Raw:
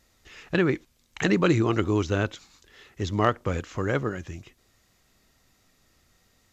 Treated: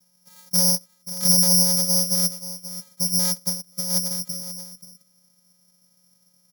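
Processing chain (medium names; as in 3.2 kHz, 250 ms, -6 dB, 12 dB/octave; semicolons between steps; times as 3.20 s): in parallel at -2 dB: peak limiter -15 dBFS, peak gain reduction 7.5 dB; on the sum: saturation -14.5 dBFS, distortion -14 dB; vocoder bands 4, square 181 Hz; on a send: delay 532 ms -13.5 dB; on the sum: careless resampling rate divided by 8×, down filtered, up zero stuff; 3.47–4.11 s: upward expansion 2.5:1, over -26 dBFS; trim -6 dB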